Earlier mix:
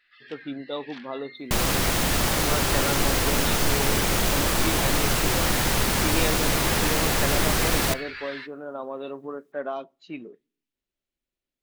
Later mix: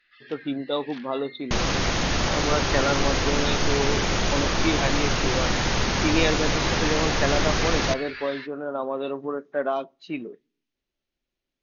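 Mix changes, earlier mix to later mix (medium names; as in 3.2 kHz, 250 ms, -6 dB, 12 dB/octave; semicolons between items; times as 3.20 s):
speech +5.5 dB; master: add brick-wall FIR low-pass 6.8 kHz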